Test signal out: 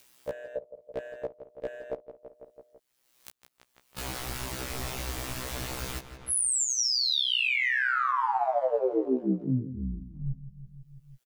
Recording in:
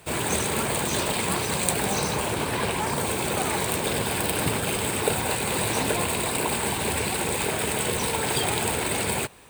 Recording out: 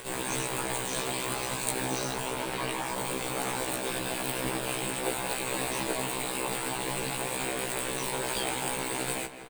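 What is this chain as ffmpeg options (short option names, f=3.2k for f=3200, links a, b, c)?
-filter_complex "[0:a]equalizer=f=130:t=o:w=0.56:g=-9.5,aeval=exprs='val(0)*sin(2*PI*63*n/s)':c=same,asplit=2[a][b];[b]adelay=166,lowpass=f=3.5k:p=1,volume=-12.5dB,asplit=2[c][d];[d]adelay=166,lowpass=f=3.5k:p=1,volume=0.53,asplit=2[e][f];[f]adelay=166,lowpass=f=3.5k:p=1,volume=0.53,asplit=2[g][h];[h]adelay=166,lowpass=f=3.5k:p=1,volume=0.53,asplit=2[i][j];[j]adelay=166,lowpass=f=3.5k:p=1,volume=0.53[k];[a][c][e][g][i][k]amix=inputs=6:normalize=0,asplit=2[l][m];[m]asoftclip=type=hard:threshold=-19.5dB,volume=-10dB[n];[l][n]amix=inputs=2:normalize=0,acompressor=mode=upward:threshold=-28dB:ratio=2.5,afftfilt=real='re*1.73*eq(mod(b,3),0)':imag='im*1.73*eq(mod(b,3),0)':win_size=2048:overlap=0.75,volume=-3dB"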